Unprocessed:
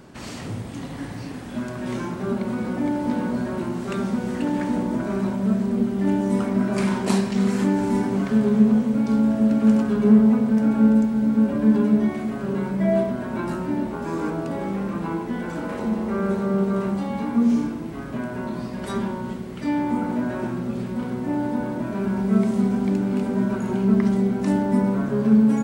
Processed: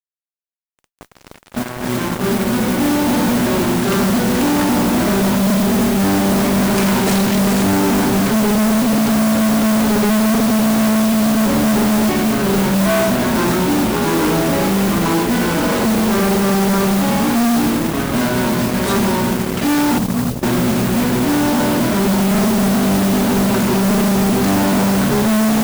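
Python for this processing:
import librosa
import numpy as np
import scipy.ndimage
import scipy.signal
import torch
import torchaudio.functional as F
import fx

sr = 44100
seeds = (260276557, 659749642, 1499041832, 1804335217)

y = fx.fade_in_head(x, sr, length_s=3.99)
y = fx.cheby2_lowpass(y, sr, hz=680.0, order=4, stop_db=60, at=(19.98, 20.43))
y = fx.fuzz(y, sr, gain_db=34.0, gate_db=-37.0)
y = fx.mod_noise(y, sr, seeds[0], snr_db=13)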